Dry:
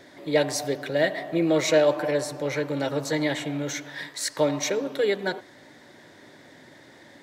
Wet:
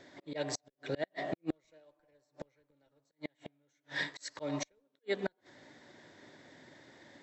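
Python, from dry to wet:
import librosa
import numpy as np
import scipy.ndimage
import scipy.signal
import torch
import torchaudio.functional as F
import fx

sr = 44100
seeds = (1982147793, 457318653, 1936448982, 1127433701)

p1 = fx.auto_swell(x, sr, attack_ms=366.0)
p2 = fx.schmitt(p1, sr, flips_db=-19.5)
p3 = p1 + F.gain(torch.from_numpy(p2), -9.5).numpy()
p4 = fx.brickwall_lowpass(p3, sr, high_hz=8000.0)
p5 = fx.gate_flip(p4, sr, shuts_db=-23.0, range_db=-35)
p6 = fx.upward_expand(p5, sr, threshold_db=-56.0, expansion=1.5)
y = F.gain(torch.from_numpy(p6), 2.5).numpy()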